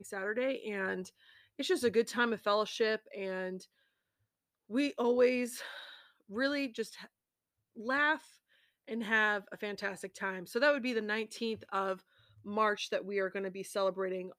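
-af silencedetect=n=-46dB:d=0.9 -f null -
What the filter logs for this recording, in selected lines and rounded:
silence_start: 3.63
silence_end: 4.70 | silence_duration: 1.07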